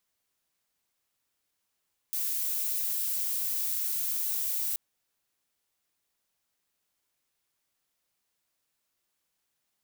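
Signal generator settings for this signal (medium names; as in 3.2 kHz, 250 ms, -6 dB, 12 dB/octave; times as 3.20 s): noise violet, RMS -30.5 dBFS 2.63 s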